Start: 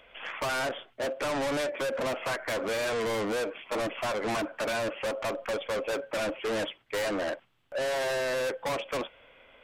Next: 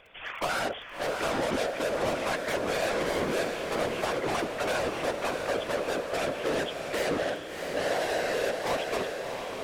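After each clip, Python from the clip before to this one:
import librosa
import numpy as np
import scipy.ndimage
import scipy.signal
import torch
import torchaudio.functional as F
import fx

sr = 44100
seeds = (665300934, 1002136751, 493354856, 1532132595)

y = fx.dmg_crackle(x, sr, seeds[0], per_s=15.0, level_db=-39.0)
y = fx.whisperise(y, sr, seeds[1])
y = fx.echo_diffused(y, sr, ms=668, feedback_pct=42, wet_db=-4.5)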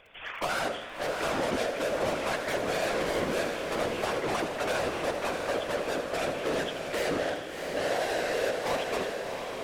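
y = fx.echo_warbled(x, sr, ms=81, feedback_pct=57, rate_hz=2.8, cents=118, wet_db=-10.0)
y = F.gain(torch.from_numpy(y), -1.0).numpy()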